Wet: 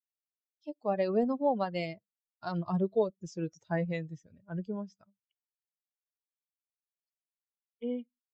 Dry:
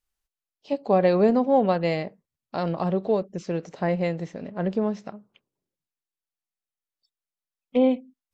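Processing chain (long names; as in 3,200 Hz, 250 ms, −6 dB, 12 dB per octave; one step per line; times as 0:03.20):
spectral dynamics exaggerated over time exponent 2
source passing by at 0:03.07, 18 m/s, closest 18 metres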